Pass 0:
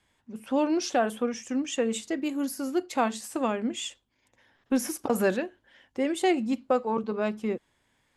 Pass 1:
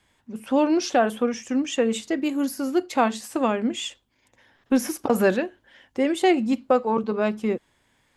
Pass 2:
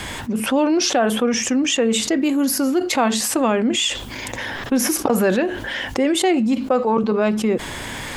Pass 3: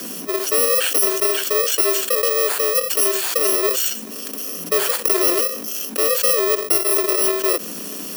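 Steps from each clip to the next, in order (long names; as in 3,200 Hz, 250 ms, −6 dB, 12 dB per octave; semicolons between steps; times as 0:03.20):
dynamic equaliser 8,700 Hz, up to −5 dB, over −49 dBFS, Q 1; level +5 dB
envelope flattener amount 70%
samples in bit-reversed order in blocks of 64 samples; frequency shifter +170 Hz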